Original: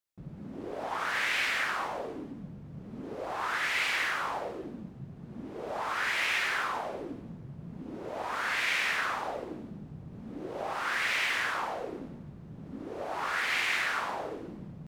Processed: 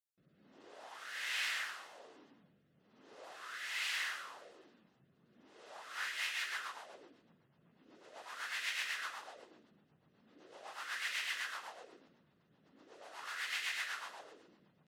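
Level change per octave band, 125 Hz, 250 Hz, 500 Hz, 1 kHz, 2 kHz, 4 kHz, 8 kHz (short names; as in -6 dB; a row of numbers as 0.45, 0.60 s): under -25 dB, -24.0 dB, -19.0 dB, -15.5 dB, -10.5 dB, -6.5 dB, -5.0 dB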